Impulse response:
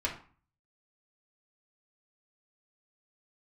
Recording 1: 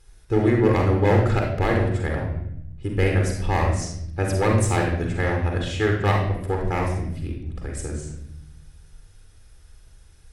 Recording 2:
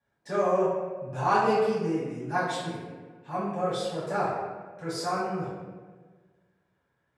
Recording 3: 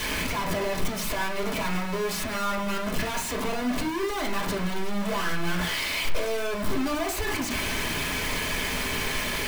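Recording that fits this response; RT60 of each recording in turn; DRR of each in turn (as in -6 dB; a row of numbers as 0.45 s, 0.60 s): 3; 0.75 s, 1.4 s, 0.40 s; 0.5 dB, -11.5 dB, -4.0 dB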